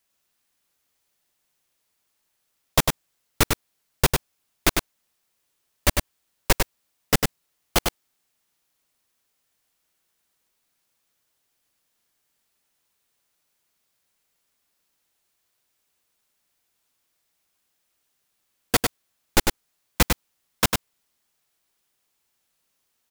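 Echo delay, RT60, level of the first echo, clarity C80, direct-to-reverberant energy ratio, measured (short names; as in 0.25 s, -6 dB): 0.1 s, none, -4.5 dB, none, none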